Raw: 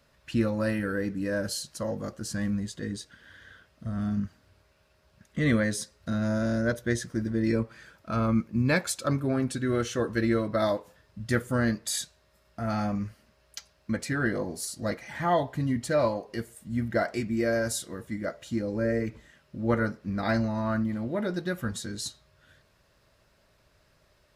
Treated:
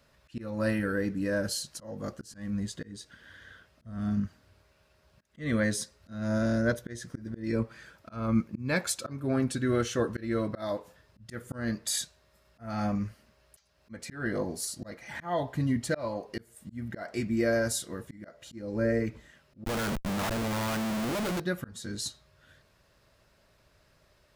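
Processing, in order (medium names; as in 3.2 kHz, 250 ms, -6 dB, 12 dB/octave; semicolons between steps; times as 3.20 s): slow attack 282 ms; 19.65–21.40 s: Schmitt trigger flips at -46.5 dBFS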